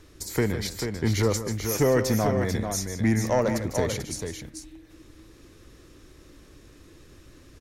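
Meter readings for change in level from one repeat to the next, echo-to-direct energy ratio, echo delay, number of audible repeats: repeats not evenly spaced, −5.0 dB, 152 ms, 2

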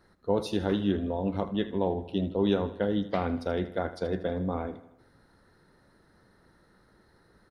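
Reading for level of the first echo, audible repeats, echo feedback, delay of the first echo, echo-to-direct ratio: −15.0 dB, 4, 54%, 79 ms, −13.5 dB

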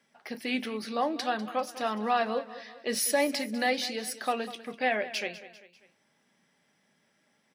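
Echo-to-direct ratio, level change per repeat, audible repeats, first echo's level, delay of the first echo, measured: −14.5 dB, −6.5 dB, 3, −15.5 dB, 197 ms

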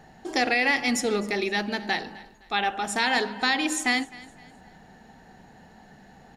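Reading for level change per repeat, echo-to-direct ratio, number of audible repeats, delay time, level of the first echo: −9.0 dB, −20.0 dB, 2, 258 ms, −20.5 dB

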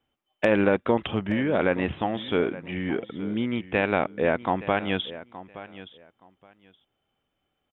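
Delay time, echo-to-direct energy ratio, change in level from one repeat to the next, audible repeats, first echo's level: 871 ms, −16.0 dB, −14.5 dB, 2, −16.0 dB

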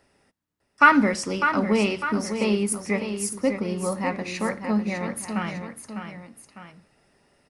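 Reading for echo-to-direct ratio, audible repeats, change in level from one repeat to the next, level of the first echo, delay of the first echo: −7.0 dB, 2, −6.0 dB, −8.0 dB, 602 ms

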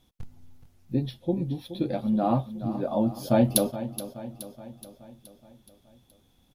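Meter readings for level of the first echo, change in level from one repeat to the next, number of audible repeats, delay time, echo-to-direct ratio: −13.0 dB, −5.0 dB, 5, 423 ms, −11.5 dB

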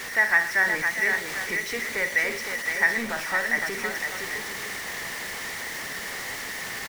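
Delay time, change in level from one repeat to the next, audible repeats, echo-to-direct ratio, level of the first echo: 52 ms, repeats not evenly spaced, 4, −3.5 dB, −11.0 dB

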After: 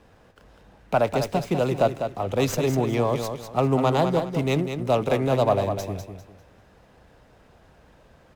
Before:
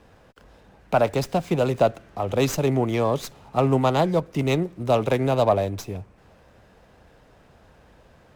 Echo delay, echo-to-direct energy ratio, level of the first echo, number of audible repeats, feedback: 199 ms, −7.0 dB, −7.5 dB, 3, 29%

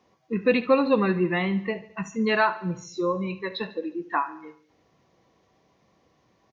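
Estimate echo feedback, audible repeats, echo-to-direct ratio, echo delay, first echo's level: 53%, 4, −15.0 dB, 72 ms, −16.5 dB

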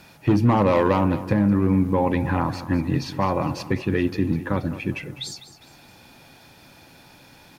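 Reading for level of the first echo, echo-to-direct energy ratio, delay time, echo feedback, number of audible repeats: −14.0 dB, −13.0 dB, 204 ms, 40%, 3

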